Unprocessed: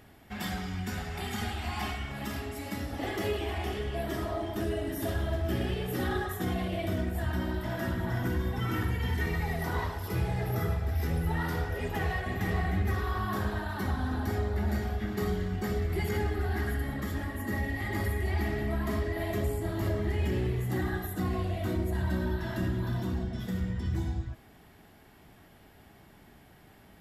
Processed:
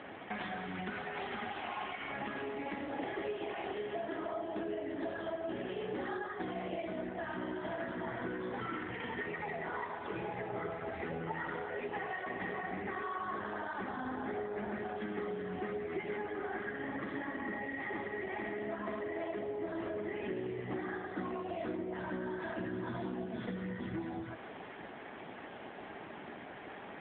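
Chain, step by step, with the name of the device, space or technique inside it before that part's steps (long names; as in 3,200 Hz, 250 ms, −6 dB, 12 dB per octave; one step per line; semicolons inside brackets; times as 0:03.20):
voicemail (band-pass filter 310–2,900 Hz; downward compressor 8 to 1, threshold −50 dBFS, peak gain reduction 20 dB; level +14 dB; AMR narrowband 7.95 kbit/s 8,000 Hz)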